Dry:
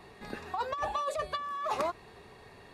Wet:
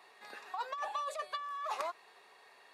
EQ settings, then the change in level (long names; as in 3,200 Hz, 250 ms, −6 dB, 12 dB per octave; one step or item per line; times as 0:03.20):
high-pass filter 730 Hz 12 dB per octave
−3.5 dB